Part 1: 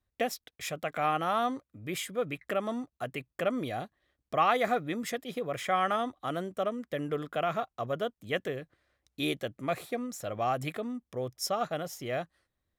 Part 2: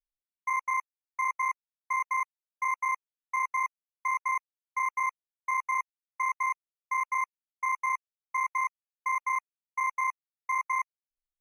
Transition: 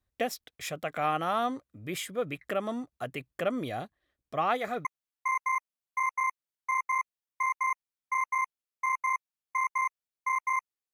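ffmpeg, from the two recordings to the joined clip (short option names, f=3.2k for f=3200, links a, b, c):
-filter_complex "[0:a]asettb=1/sr,asplit=3[a][b][c];[a]atrim=end=3.874[d];[b]atrim=start=3.87:end=4.85,asetpts=PTS-STARTPTS,afade=t=in:d=0.004:c=qsin,afade=t=out:st=0.976:d=0.004:c=qsin,flanger=delay=0.1:depth=7.4:regen=53:speed=1.1:shape=triangular[e];[c]atrim=start=4.846[f];[d][e]acrossfade=d=0.004:c1=hsin:c2=qsin[g];[g][f]acrossfade=d=0.004:c1=qsin:c2=hsin,apad=whole_dur=10.93,atrim=end=10.93,atrim=end=4.852[h];[1:a]atrim=start=2.928:end=9.01[i];[h][i]acrossfade=d=0.004:c1=hsin:c2=hsin"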